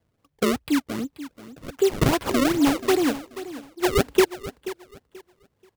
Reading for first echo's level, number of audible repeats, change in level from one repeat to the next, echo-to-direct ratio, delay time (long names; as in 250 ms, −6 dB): −14.5 dB, 2, −12.5 dB, −14.5 dB, 483 ms